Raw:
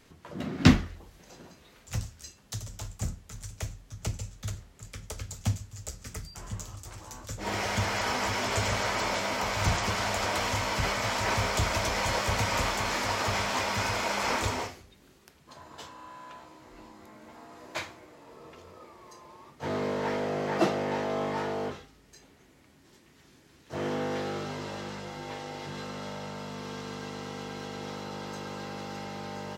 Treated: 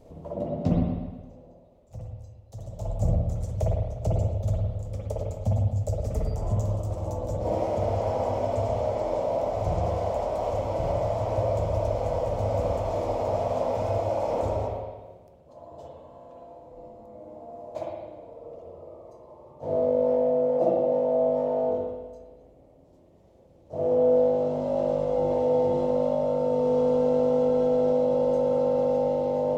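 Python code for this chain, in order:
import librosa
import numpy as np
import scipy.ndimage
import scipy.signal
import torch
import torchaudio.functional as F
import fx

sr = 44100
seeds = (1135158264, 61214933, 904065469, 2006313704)

y = fx.curve_eq(x, sr, hz=(110.0, 370.0, 580.0, 1600.0, 2200.0, 7200.0), db=(0, -5, 9, -26, -22, -16))
y = fx.rider(y, sr, range_db=10, speed_s=0.5)
y = fx.rev_spring(y, sr, rt60_s=1.3, pass_ms=(52, 58), chirp_ms=70, drr_db=-4.0)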